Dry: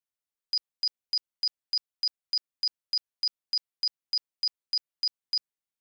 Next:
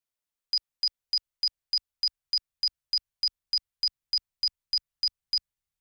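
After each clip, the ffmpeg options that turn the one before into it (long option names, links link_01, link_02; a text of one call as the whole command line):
ffmpeg -i in.wav -af "asubboost=boost=10:cutoff=100,volume=1.5dB" out.wav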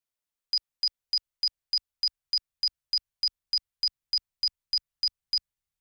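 ffmpeg -i in.wav -af anull out.wav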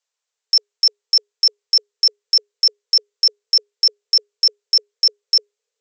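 ffmpeg -i in.wav -af "aresample=16000,aresample=44100,highshelf=frequency=6100:gain=9.5,afreqshift=410,volume=8.5dB" out.wav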